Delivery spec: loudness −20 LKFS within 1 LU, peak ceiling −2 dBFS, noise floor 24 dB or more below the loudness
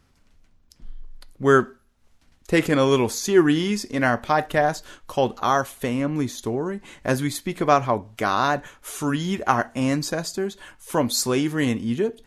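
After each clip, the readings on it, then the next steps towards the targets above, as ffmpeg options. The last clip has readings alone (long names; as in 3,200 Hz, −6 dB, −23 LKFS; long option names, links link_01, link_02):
integrated loudness −23.0 LKFS; sample peak −3.0 dBFS; target loudness −20.0 LKFS
→ -af "volume=3dB,alimiter=limit=-2dB:level=0:latency=1"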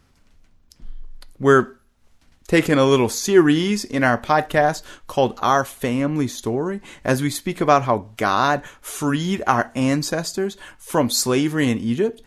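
integrated loudness −20.0 LKFS; sample peak −2.0 dBFS; background noise floor −57 dBFS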